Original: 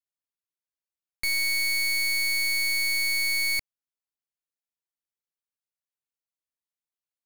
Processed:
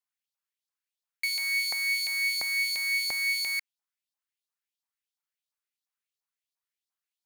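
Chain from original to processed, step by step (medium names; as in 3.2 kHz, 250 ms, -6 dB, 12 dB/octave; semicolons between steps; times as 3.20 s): saturation -30.5 dBFS, distortion -65 dB; LFO high-pass saw up 2.9 Hz 770–4700 Hz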